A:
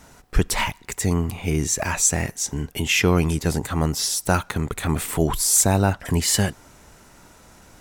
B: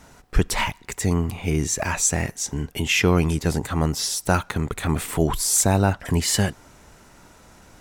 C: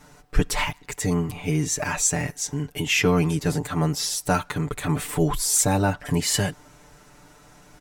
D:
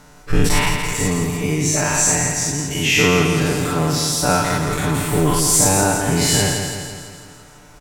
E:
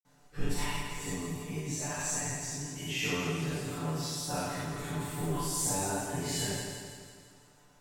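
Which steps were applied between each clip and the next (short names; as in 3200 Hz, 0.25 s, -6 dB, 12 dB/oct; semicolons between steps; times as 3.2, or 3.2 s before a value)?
high shelf 7700 Hz -4.5 dB
comb 6.8 ms, depth 97%; gain -4 dB
spectral dilation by 0.12 s; on a send: feedback echo 0.167 s, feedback 57%, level -6 dB
reverb RT60 0.50 s, pre-delay 47 ms; gain -3 dB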